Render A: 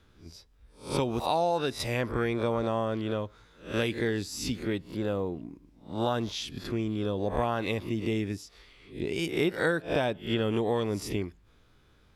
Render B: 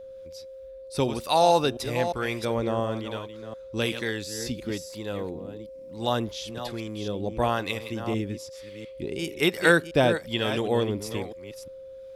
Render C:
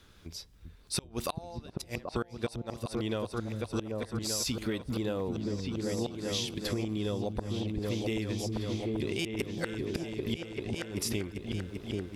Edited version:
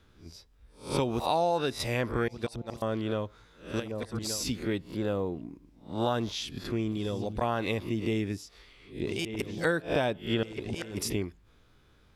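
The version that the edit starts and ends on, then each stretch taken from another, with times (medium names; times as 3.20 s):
A
2.28–2.82 s: from C
3.76–4.43 s: from C, crossfade 0.24 s
6.92–7.41 s: from C
9.07–9.65 s: from C
10.43–11.10 s: from C
not used: B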